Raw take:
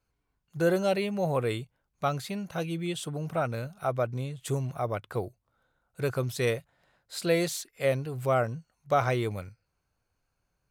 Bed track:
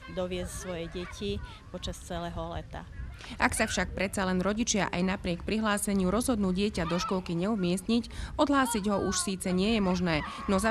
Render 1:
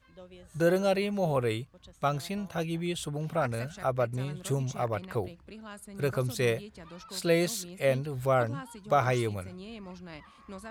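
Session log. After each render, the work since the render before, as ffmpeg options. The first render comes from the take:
-filter_complex "[1:a]volume=0.141[s0];[0:a][s0]amix=inputs=2:normalize=0"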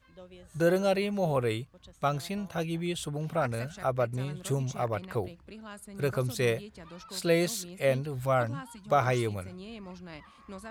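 -filter_complex "[0:a]asettb=1/sr,asplit=3[s0][s1][s2];[s0]atrim=end=8.194[s3];[s1]atrim=start=8.19:end=8.9,asetpts=PTS-STARTPTS,afade=t=in:d=0.004:c=qsin,afade=t=out:st=0.706:d=0.004:c=qsin,equalizer=f=420:t=o:w=0.29:g=-13.5[s4];[s2]atrim=start=8.896[s5];[s3][s4]acrossfade=d=0.004:c1=hsin:c2=qsin[s6];[s6][s5]acrossfade=d=0.004:c1=qsin:c2=hsin"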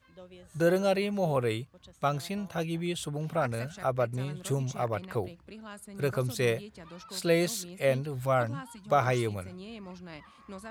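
-af "highpass=64"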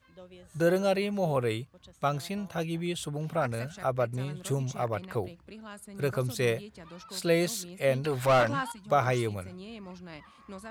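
-filter_complex "[0:a]asettb=1/sr,asplit=3[s0][s1][s2];[s0]atrim=end=8.044[s3];[s1]atrim=start=8.04:end=8.72,asetpts=PTS-STARTPTS,afade=t=in:d=0.004:c=qsin,afade=t=out:st=0.676:d=0.004:c=qsin,asplit=2[s4][s5];[s5]highpass=f=720:p=1,volume=11.2,asoftclip=type=tanh:threshold=0.178[s6];[s4][s6]amix=inputs=2:normalize=0,lowpass=f=3800:p=1,volume=0.501[s7];[s2]atrim=start=8.716[s8];[s3][s7]acrossfade=d=0.004:c1=hsin:c2=qsin[s9];[s9][s8]acrossfade=d=0.004:c1=qsin:c2=hsin"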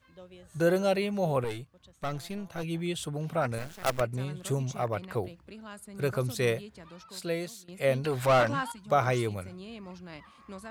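-filter_complex "[0:a]asettb=1/sr,asplit=3[s0][s1][s2];[s0]atrim=end=1.444[s3];[s1]atrim=start=1.44:end=2.63,asetpts=PTS-STARTPTS,afade=t=in:d=0.004:c=qsin,afade=t=out:st=1.186:d=0.004:c=qsin,aeval=exprs='(tanh(22.4*val(0)+0.65)-tanh(0.65))/22.4':c=same[s4];[s2]atrim=start=2.626[s5];[s3][s4]acrossfade=d=0.004:c1=hsin:c2=qsin[s6];[s6][s5]acrossfade=d=0.004:c1=qsin:c2=hsin,asettb=1/sr,asplit=3[s7][s8][s9];[s7]atrim=end=3.584[s10];[s8]atrim=start=3.58:end=4.01,asetpts=PTS-STARTPTS,afade=t=in:d=0.004:c=qsin,afade=t=out:st=0.426:d=0.004:c=qsin,acrusher=bits=5:dc=4:mix=0:aa=0.000001[s11];[s9]atrim=start=4.006[s12];[s10][s11]acrossfade=d=0.004:c1=hsin:c2=qsin[s13];[s13][s12]acrossfade=d=0.004:c1=qsin:c2=hsin,asplit=2[s14][s15];[s14]atrim=end=7.68,asetpts=PTS-STARTPTS,afade=t=out:st=6.68:d=1:silence=0.158489[s16];[s15]atrim=start=7.68,asetpts=PTS-STARTPTS,afade=t=in:d=0.004:c=hsin:silence=0.158489[s17];[s16][s17]concat=n=2:v=0:a=1"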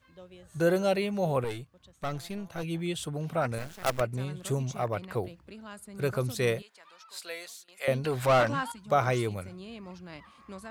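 -filter_complex "[0:a]asettb=1/sr,asplit=3[s0][s1][s2];[s0]atrim=end=6.624[s3];[s1]atrim=start=6.62:end=7.88,asetpts=PTS-STARTPTS,afade=t=in:d=0.004:c=qsin,afade=t=out:st=1.256:d=0.004:c=qsin,highpass=870[s4];[s2]atrim=start=7.876[s5];[s3][s4]acrossfade=d=0.004:c1=hsin:c2=qsin[s6];[s6][s5]acrossfade=d=0.004:c1=qsin:c2=hsin"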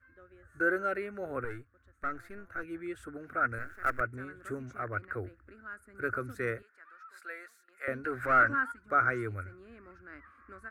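-af "firequalizer=gain_entry='entry(100,0);entry(150,-25);entry(270,-2);entry(520,-9);entry(930,-16);entry(1400,10);entry(3100,-24);entry(10000,-16)':delay=0.05:min_phase=1"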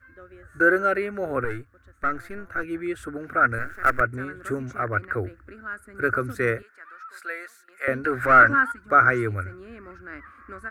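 -af "volume=3.16"

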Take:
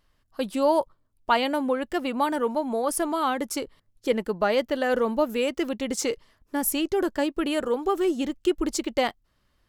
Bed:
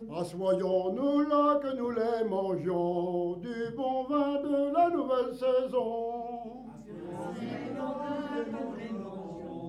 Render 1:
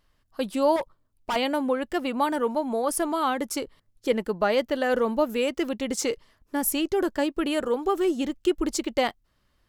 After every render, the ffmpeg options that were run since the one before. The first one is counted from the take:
-filter_complex "[0:a]asettb=1/sr,asplit=3[s0][s1][s2];[s0]atrim=end=0.764[s3];[s1]atrim=start=0.76:end=1.36,asetpts=PTS-STARTPTS,afade=t=in:d=0.004:c=qsin,afade=t=out:st=0.596:d=0.004:c=qsin,volume=15.8,asoftclip=hard,volume=0.0631[s4];[s2]atrim=start=1.356[s5];[s3][s4]acrossfade=d=0.004:c1=hsin:c2=qsin[s6];[s6][s5]acrossfade=d=0.004:c1=qsin:c2=hsin"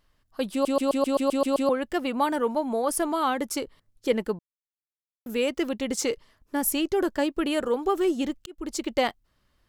-filter_complex "[0:a]asplit=13[s0][s1][s2][s3][s4][s5][s6][s7][s8][s9][s10][s11][s12];[s0]atrim=end=0.652[s13];[s1]atrim=start=0.518:end=0.652[s14];[s2]atrim=start=0.518:end=0.652[s15];[s3]atrim=start=0.518:end=0.652[s16];[s4]atrim=start=0.518:end=0.652[s17];[s5]atrim=start=0.518:end=0.652[s18];[s6]atrim=start=0.518:end=0.652[s19];[s7]atrim=start=0.518:end=0.652[s20];[s8]atrim=start=0.518:end=0.652[s21];[s9]atrim=start=1.688:end=4.39,asetpts=PTS-STARTPTS,afade=t=out:st=2.698:d=0.004:c=hsin[s22];[s10]atrim=start=4.39:end=5.26,asetpts=PTS-STARTPTS,volume=0[s23];[s11]atrim=start=5.26:end=8.46,asetpts=PTS-STARTPTS,afade=t=in:d=0.004:c=hsin,afade=t=out:st=3.196:d=0.004:c=hsin[s24];[s12]atrim=start=8.46,asetpts=PTS-STARTPTS,afade=t=in:d=0.44[s25];[s13][s14]acrossfade=d=0.004:c1=hsin:c2=hsin[s26];[s26][s15]acrossfade=d=0.004:c1=hsin:c2=hsin[s27];[s27][s16]acrossfade=d=0.004:c1=hsin:c2=hsin[s28];[s28][s17]acrossfade=d=0.004:c1=hsin:c2=hsin[s29];[s29][s18]acrossfade=d=0.004:c1=hsin:c2=hsin[s30];[s30][s19]acrossfade=d=0.004:c1=hsin:c2=hsin[s31];[s31][s20]acrossfade=d=0.004:c1=hsin:c2=hsin[s32];[s32][s21]acrossfade=d=0.004:c1=hsin:c2=hsin[s33];[s22][s23][s24][s25]concat=n=4:v=0:a=1[s34];[s33][s34]acrossfade=d=0.004:c1=hsin:c2=hsin"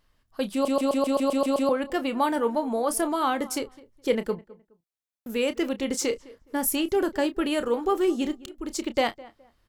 -filter_complex "[0:a]asplit=2[s0][s1];[s1]adelay=30,volume=0.251[s2];[s0][s2]amix=inputs=2:normalize=0,asplit=2[s3][s4];[s4]adelay=209,lowpass=f=1700:p=1,volume=0.1,asplit=2[s5][s6];[s6]adelay=209,lowpass=f=1700:p=1,volume=0.26[s7];[s3][s5][s7]amix=inputs=3:normalize=0"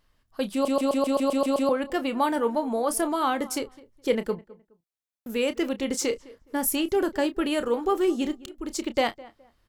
-af anull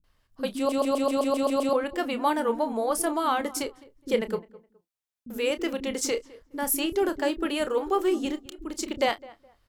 -filter_complex "[0:a]acrossover=split=260[s0][s1];[s1]adelay=40[s2];[s0][s2]amix=inputs=2:normalize=0"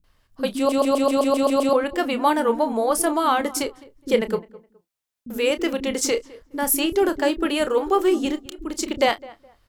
-af "volume=1.88"

